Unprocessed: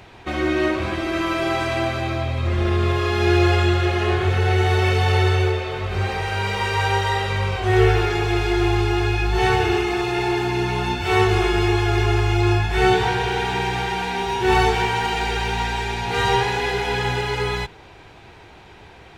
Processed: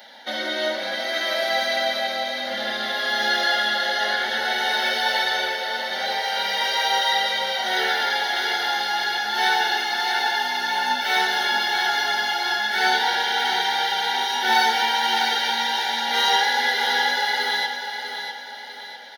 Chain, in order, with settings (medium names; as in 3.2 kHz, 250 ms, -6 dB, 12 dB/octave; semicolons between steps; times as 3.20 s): elliptic high-pass 220 Hz, stop band 40 dB; treble shelf 2 kHz +11 dB; static phaser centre 1.7 kHz, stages 8; comb 3.5 ms, depth 56%; feedback delay 649 ms, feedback 43%, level -8 dB